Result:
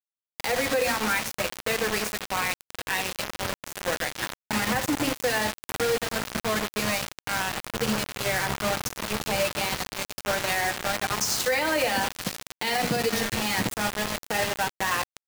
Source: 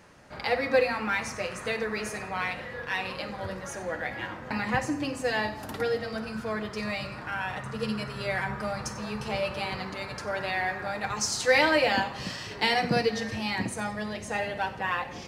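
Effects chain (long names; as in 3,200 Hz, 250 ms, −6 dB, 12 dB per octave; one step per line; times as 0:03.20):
bit reduction 5 bits
brickwall limiter −19.5 dBFS, peak gain reduction 11 dB
level +4 dB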